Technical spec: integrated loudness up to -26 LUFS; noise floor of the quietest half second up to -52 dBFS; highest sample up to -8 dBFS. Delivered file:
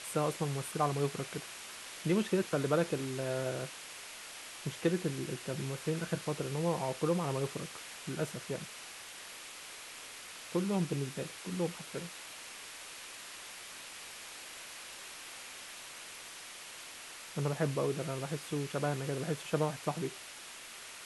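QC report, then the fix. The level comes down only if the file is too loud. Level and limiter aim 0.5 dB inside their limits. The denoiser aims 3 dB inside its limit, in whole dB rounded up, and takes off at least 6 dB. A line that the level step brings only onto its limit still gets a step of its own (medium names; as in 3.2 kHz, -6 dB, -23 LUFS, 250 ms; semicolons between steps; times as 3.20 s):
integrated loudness -37.5 LUFS: pass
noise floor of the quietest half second -49 dBFS: fail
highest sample -16.5 dBFS: pass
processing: noise reduction 6 dB, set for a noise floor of -49 dBFS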